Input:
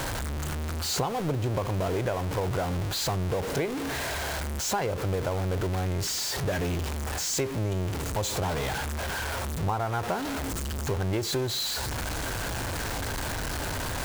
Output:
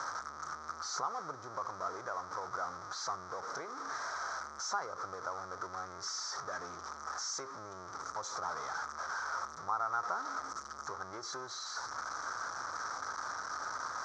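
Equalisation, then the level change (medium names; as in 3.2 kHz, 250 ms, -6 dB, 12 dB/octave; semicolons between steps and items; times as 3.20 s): two resonant band-passes 2.7 kHz, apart 2.2 oct; distance through air 160 m; +7.5 dB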